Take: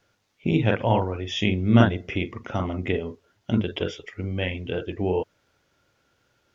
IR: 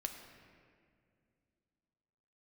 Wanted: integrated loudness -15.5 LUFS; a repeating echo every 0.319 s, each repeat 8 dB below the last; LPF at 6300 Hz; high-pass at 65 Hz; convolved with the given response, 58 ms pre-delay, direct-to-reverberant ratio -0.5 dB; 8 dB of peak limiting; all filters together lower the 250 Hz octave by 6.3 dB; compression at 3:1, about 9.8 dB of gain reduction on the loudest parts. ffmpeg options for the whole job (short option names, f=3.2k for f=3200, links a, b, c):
-filter_complex "[0:a]highpass=65,lowpass=6.3k,equalizer=f=250:t=o:g=-8,acompressor=threshold=-27dB:ratio=3,alimiter=limit=-20dB:level=0:latency=1,aecho=1:1:319|638|957|1276|1595:0.398|0.159|0.0637|0.0255|0.0102,asplit=2[a][b];[1:a]atrim=start_sample=2205,adelay=58[c];[b][c]afir=irnorm=-1:irlink=0,volume=1.5dB[d];[a][d]amix=inputs=2:normalize=0,volume=15dB"